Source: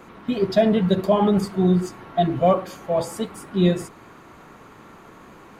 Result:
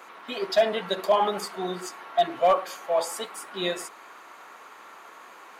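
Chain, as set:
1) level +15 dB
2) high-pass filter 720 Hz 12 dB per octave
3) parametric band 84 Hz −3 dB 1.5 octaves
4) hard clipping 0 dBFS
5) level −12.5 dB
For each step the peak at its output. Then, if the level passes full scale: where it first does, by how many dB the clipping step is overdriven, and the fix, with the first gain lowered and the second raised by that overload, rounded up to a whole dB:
+8.0, +4.0, +4.0, 0.0, −12.5 dBFS
step 1, 4.0 dB
step 1 +11 dB, step 5 −8.5 dB

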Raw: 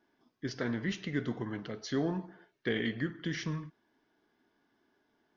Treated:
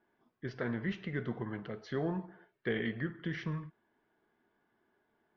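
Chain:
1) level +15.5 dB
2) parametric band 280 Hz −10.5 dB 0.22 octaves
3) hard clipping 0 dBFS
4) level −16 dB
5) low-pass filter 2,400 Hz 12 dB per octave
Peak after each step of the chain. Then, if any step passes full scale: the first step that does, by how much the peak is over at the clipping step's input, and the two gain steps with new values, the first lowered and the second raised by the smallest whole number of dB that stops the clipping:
−4.0, −5.0, −5.0, −21.0, −21.0 dBFS
no step passes full scale

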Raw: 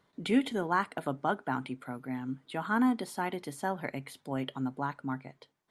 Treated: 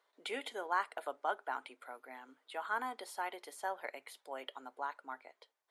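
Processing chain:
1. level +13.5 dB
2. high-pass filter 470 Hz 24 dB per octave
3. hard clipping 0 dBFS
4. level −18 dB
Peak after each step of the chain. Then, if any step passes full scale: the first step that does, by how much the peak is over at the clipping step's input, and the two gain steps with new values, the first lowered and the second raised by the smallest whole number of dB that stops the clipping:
−1.5, −2.5, −2.5, −20.5 dBFS
no step passes full scale

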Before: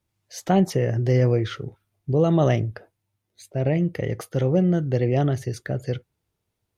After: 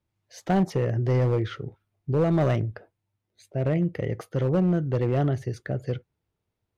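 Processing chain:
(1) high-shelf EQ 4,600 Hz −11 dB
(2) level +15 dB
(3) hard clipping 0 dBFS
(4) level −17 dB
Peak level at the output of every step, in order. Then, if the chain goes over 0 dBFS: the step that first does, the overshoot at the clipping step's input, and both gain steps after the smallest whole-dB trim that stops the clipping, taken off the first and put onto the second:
−8.5, +6.5, 0.0, −17.0 dBFS
step 2, 6.5 dB
step 2 +8 dB, step 4 −10 dB

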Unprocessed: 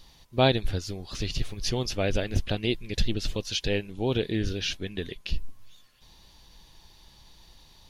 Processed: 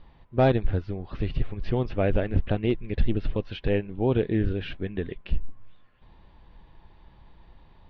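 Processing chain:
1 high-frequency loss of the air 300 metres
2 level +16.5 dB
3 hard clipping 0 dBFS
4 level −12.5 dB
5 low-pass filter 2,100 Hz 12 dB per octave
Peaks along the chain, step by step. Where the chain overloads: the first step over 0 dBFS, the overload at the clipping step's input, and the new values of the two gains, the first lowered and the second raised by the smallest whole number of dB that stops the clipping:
−9.5, +7.0, 0.0, −12.5, −12.0 dBFS
step 2, 7.0 dB
step 2 +9.5 dB, step 4 −5.5 dB

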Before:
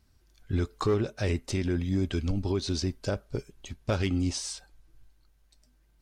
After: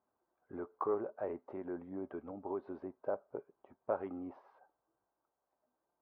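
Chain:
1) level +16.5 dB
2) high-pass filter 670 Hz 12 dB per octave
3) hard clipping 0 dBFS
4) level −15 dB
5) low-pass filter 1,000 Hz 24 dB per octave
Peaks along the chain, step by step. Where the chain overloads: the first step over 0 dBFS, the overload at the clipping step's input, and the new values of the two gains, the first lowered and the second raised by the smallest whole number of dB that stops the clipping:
−0.5, −1.5, −1.5, −16.5, −22.0 dBFS
no step passes full scale

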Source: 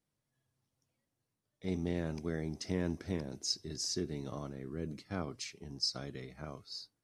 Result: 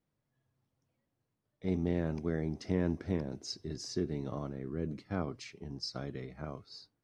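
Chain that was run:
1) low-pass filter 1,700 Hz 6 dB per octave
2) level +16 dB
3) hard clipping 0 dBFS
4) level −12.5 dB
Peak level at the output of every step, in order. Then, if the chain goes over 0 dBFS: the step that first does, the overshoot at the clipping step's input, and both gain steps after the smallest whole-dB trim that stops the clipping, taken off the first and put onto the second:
−21.5, −5.5, −5.5, −18.0 dBFS
no step passes full scale

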